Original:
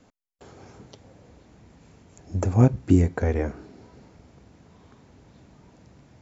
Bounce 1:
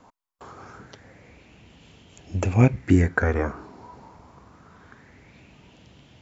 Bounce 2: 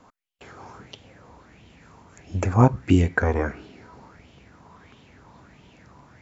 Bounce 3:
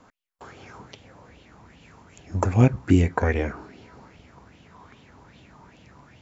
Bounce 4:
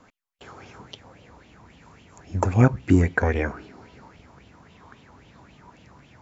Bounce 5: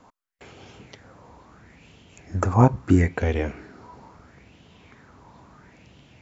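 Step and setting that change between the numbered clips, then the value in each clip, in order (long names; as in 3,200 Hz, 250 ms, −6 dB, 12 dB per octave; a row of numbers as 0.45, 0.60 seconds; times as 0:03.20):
auto-filter bell, speed: 0.25, 1.5, 2.5, 3.7, 0.75 Hertz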